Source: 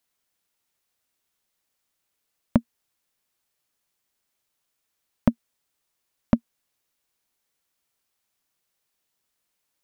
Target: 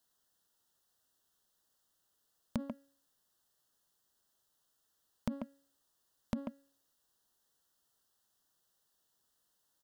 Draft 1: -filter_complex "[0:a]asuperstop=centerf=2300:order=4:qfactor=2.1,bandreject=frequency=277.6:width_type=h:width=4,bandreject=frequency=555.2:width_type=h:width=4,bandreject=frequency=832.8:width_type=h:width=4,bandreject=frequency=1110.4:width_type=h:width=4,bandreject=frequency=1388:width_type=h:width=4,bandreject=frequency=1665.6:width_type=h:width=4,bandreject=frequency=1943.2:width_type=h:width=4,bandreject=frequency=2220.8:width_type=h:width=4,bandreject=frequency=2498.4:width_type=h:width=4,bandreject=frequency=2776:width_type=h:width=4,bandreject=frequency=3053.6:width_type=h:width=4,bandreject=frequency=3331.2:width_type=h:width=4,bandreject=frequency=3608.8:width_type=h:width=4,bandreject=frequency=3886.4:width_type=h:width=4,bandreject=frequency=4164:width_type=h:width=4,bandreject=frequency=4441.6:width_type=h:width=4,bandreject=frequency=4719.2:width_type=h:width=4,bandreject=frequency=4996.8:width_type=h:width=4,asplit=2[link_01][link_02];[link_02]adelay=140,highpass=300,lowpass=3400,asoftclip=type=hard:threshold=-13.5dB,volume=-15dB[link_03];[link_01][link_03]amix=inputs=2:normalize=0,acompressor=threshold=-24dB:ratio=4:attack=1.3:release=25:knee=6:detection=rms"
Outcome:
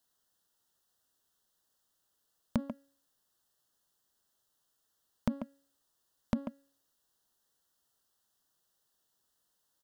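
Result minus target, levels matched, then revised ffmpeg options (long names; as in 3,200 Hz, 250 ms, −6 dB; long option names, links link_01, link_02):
downward compressor: peak gain reduction −5.5 dB
-filter_complex "[0:a]asuperstop=centerf=2300:order=4:qfactor=2.1,bandreject=frequency=277.6:width_type=h:width=4,bandreject=frequency=555.2:width_type=h:width=4,bandreject=frequency=832.8:width_type=h:width=4,bandreject=frequency=1110.4:width_type=h:width=4,bandreject=frequency=1388:width_type=h:width=4,bandreject=frequency=1665.6:width_type=h:width=4,bandreject=frequency=1943.2:width_type=h:width=4,bandreject=frequency=2220.8:width_type=h:width=4,bandreject=frequency=2498.4:width_type=h:width=4,bandreject=frequency=2776:width_type=h:width=4,bandreject=frequency=3053.6:width_type=h:width=4,bandreject=frequency=3331.2:width_type=h:width=4,bandreject=frequency=3608.8:width_type=h:width=4,bandreject=frequency=3886.4:width_type=h:width=4,bandreject=frequency=4164:width_type=h:width=4,bandreject=frequency=4441.6:width_type=h:width=4,bandreject=frequency=4719.2:width_type=h:width=4,bandreject=frequency=4996.8:width_type=h:width=4,asplit=2[link_01][link_02];[link_02]adelay=140,highpass=300,lowpass=3400,asoftclip=type=hard:threshold=-13.5dB,volume=-15dB[link_03];[link_01][link_03]amix=inputs=2:normalize=0,acompressor=threshold=-31dB:ratio=4:attack=1.3:release=25:knee=6:detection=rms"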